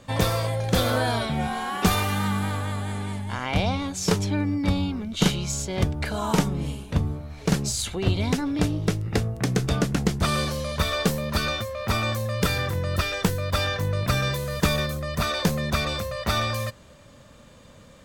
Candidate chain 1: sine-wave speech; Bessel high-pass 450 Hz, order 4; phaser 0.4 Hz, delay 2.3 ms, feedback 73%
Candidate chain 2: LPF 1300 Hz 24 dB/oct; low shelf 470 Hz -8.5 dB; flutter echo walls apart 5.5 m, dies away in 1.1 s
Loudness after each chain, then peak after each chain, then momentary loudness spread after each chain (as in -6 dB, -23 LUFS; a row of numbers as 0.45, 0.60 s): -23.5, -26.5 LUFS; -2.0, -11.0 dBFS; 11, 6 LU